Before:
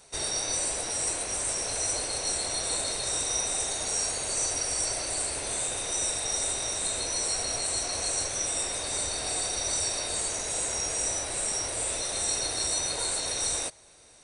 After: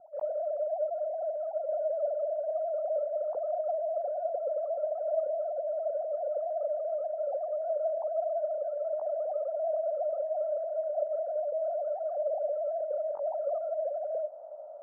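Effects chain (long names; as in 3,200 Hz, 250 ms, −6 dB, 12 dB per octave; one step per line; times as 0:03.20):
three sine waves on the formant tracks
Butterworth low-pass 880 Hz 36 dB per octave
feedback delay with all-pass diffusion 1,295 ms, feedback 67%, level −15.5 dB
wrong playback speed 25 fps video run at 24 fps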